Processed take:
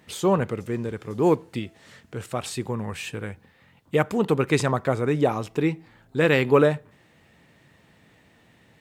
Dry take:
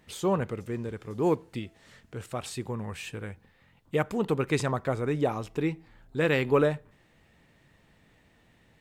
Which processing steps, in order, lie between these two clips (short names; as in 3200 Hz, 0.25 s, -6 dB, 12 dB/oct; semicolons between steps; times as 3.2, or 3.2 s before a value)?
HPF 84 Hz; gain +5.5 dB